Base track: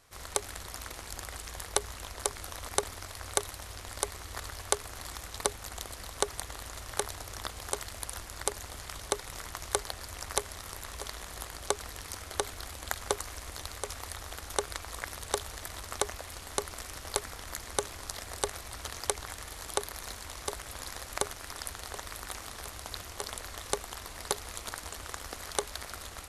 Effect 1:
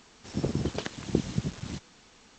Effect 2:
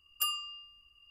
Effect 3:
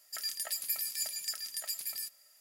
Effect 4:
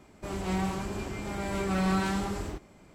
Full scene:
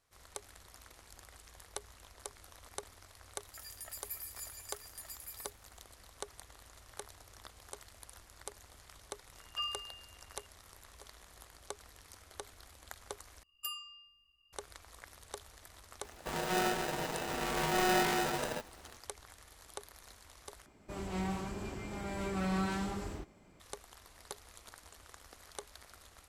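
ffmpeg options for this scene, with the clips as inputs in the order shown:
ffmpeg -i bed.wav -i cue0.wav -i cue1.wav -i cue2.wav -i cue3.wav -filter_complex "[2:a]asplit=2[link_01][link_02];[4:a]asplit=2[link_03][link_04];[0:a]volume=-14.5dB[link_05];[3:a]equalizer=frequency=4400:width_type=o:width=0.8:gain=-8.5[link_06];[link_01]lowpass=frequency=4000:width=0.5412,lowpass=frequency=4000:width=1.3066[link_07];[link_02]asuperstop=centerf=1500:order=4:qfactor=7.2[link_08];[link_03]aeval=exprs='val(0)*sgn(sin(2*PI*550*n/s))':channel_layout=same[link_09];[link_05]asplit=3[link_10][link_11][link_12];[link_10]atrim=end=13.434[link_13];[link_08]atrim=end=1.1,asetpts=PTS-STARTPTS,volume=-9dB[link_14];[link_11]atrim=start=14.526:end=20.664[link_15];[link_04]atrim=end=2.94,asetpts=PTS-STARTPTS,volume=-6.5dB[link_16];[link_12]atrim=start=23.596[link_17];[link_06]atrim=end=2.4,asetpts=PTS-STARTPTS,volume=-9dB,afade=type=in:duration=0.004:curve=hsin,afade=type=out:start_time=2.396:duration=0.004:curve=hsin,adelay=150381S[link_18];[link_07]atrim=end=1.1,asetpts=PTS-STARTPTS,volume=-3dB,afade=type=in:duration=0.004:curve=hsin,afade=type=out:start_time=1.096:duration=0.004:curve=hsin,adelay=9360[link_19];[link_09]atrim=end=2.94,asetpts=PTS-STARTPTS,volume=-2.5dB,afade=type=in:duration=0.004:curve=hsin,afade=type=out:start_time=2.936:duration=0.004:curve=hsin,adelay=16030[link_20];[link_13][link_14]acrossfade=duration=0.004:curve1=hsin:curve2=hsin[link_21];[link_21][link_15]acrossfade=duration=0.004:curve1=hsin:curve2=hsin[link_22];[link_22][link_16]acrossfade=duration=0.004:curve1=hsin:curve2=hsin[link_23];[link_23][link_17]acrossfade=duration=0.004:curve1=hsin:curve2=hsin[link_24];[link_24][link_18][link_19][link_20]amix=inputs=4:normalize=0" out.wav

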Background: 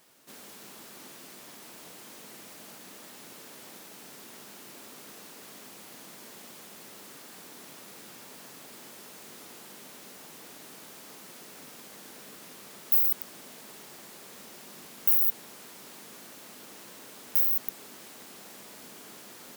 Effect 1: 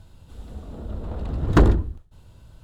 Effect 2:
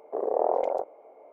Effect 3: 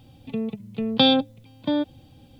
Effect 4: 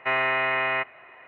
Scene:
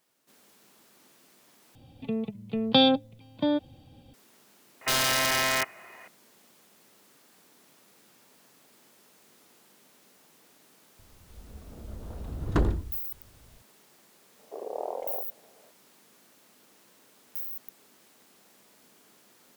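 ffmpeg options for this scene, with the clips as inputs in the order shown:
ffmpeg -i bed.wav -i cue0.wav -i cue1.wav -i cue2.wav -i cue3.wav -filter_complex "[0:a]volume=-12dB[link_01];[3:a]equalizer=frequency=660:width_type=o:width=0.96:gain=2.5[link_02];[4:a]aeval=exprs='(mod(8.91*val(0)+1,2)-1)/8.91':channel_layout=same[link_03];[link_01]asplit=2[link_04][link_05];[link_04]atrim=end=1.754[link_06];[link_02]atrim=end=2.39,asetpts=PTS-STARTPTS,volume=-3dB[link_07];[link_05]atrim=start=4.136[link_08];[link_03]atrim=end=1.27,asetpts=PTS-STARTPTS,volume=-0.5dB,afade=type=in:duration=0.004:curve=hsin,afade=type=out:start_time=1.266:duration=0.004:curve=hsin,adelay=212121S[link_09];[1:a]atrim=end=2.63,asetpts=PTS-STARTPTS,volume=-9.5dB,afade=type=in:duration=0.004:curve=hsin,afade=type=out:start_time=2.626:duration=0.004:curve=hsin,adelay=10990[link_10];[2:a]atrim=end=1.32,asetpts=PTS-STARTPTS,volume=-9.5dB,afade=type=in:duration=0.004:curve=hsin,afade=type=out:start_time=1.316:duration=0.004:curve=hsin,adelay=14390[link_11];[link_06][link_07]acrossfade=duration=0.004:curve1=hsin:curve2=hsin[link_12];[link_12][link_08]acrossfade=duration=0.004:curve1=hsin:curve2=hsin[link_13];[link_13][link_09][link_10][link_11]amix=inputs=4:normalize=0" out.wav

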